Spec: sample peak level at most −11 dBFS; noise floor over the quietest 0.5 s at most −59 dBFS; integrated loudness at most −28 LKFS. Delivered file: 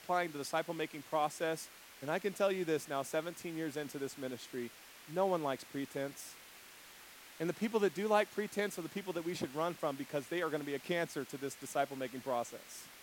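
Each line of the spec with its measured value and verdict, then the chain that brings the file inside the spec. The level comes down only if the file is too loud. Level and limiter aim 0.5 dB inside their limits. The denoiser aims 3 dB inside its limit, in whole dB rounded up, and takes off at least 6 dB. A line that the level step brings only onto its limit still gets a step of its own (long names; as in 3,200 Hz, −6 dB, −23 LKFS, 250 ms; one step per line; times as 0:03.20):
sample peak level −16.0 dBFS: in spec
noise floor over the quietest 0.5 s −56 dBFS: out of spec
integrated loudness −37.5 LKFS: in spec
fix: broadband denoise 6 dB, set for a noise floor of −56 dBFS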